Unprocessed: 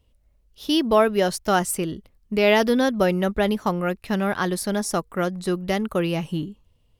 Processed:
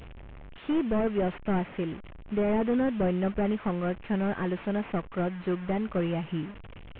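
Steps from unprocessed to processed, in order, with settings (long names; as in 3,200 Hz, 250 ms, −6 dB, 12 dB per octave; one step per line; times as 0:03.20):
linear delta modulator 16 kbit/s, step −33.5 dBFS
level −5 dB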